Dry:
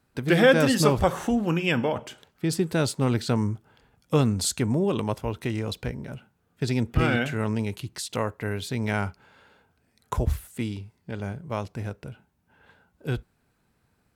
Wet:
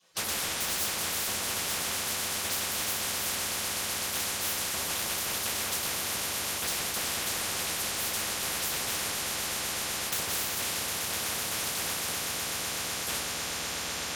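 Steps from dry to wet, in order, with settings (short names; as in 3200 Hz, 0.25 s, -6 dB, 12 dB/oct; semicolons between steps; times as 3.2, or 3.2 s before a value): LPF 12000 Hz 12 dB/oct; gate with hold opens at -51 dBFS; 2.58–4.74 HPF 860 Hz 12 dB/oct; spectral gate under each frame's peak -20 dB weak; compressor, threshold -38 dBFS, peak gain reduction 12.5 dB; soft clip -31.5 dBFS, distortion -19 dB; ring modulator 160 Hz; swelling echo 0.126 s, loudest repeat 8, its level -17 dB; reverb RT60 0.45 s, pre-delay 3 ms, DRR -5 dB; spectral compressor 10:1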